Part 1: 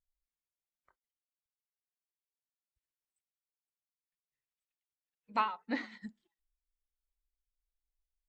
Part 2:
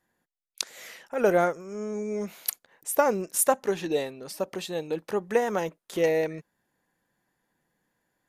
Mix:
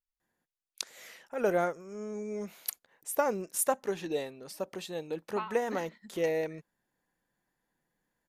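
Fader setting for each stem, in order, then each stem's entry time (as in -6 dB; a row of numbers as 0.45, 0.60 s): -7.0, -6.0 dB; 0.00, 0.20 s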